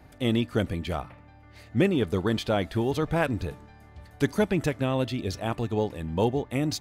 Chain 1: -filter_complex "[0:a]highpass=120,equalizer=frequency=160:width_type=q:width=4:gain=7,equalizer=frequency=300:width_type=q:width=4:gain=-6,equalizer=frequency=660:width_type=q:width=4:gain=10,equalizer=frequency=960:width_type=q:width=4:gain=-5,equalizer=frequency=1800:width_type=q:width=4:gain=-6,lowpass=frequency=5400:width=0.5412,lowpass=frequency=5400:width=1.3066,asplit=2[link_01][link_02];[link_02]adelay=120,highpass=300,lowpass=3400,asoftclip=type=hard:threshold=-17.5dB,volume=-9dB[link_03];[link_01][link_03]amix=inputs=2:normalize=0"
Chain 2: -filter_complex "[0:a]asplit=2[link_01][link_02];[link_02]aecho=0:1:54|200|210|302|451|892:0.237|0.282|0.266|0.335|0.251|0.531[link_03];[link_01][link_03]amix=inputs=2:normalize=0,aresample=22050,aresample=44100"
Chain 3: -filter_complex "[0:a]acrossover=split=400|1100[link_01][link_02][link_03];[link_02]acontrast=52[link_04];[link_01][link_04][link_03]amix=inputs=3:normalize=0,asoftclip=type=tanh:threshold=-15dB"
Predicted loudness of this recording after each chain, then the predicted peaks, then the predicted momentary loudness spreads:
−26.0, −26.0, −27.0 LKFS; −9.0, −9.0, −15.0 dBFS; 8, 6, 7 LU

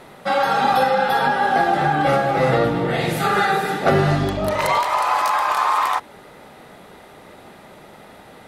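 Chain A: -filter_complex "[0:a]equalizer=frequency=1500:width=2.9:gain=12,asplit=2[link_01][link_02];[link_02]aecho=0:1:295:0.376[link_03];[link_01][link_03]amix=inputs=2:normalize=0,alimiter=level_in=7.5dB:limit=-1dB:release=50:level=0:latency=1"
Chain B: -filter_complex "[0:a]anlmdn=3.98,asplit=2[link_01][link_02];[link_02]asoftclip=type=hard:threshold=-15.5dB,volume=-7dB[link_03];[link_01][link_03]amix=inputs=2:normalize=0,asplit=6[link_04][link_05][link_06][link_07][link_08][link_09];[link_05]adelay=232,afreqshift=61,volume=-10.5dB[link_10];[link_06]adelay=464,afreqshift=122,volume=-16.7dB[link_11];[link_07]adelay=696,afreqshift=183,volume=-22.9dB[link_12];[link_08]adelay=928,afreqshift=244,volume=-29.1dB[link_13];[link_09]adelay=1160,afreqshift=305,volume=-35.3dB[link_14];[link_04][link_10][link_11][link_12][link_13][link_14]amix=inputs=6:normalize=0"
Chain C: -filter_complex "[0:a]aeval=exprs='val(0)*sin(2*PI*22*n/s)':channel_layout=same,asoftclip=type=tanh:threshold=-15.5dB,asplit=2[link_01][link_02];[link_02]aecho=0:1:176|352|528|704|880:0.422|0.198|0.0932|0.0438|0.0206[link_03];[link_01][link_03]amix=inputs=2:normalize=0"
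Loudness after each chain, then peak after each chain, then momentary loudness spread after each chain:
−9.5, −15.5, −23.0 LKFS; −1.0, −3.0, −12.5 dBFS; 3, 4, 4 LU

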